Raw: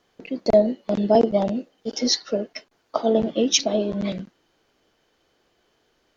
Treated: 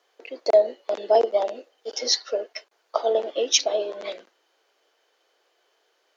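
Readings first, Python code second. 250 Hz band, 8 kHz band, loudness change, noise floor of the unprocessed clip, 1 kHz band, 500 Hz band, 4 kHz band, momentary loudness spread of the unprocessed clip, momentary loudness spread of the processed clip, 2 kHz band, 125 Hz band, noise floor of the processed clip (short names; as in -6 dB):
-20.0 dB, n/a, -1.5 dB, -68 dBFS, 0.0 dB, -0.5 dB, 0.0 dB, 13 LU, 18 LU, 0.0 dB, under -30 dB, -69 dBFS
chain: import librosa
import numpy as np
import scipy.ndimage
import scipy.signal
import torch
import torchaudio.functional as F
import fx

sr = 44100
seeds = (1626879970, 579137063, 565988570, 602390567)

y = scipy.signal.sosfilt(scipy.signal.cheby2(4, 50, 160.0, 'highpass', fs=sr, output='sos'), x)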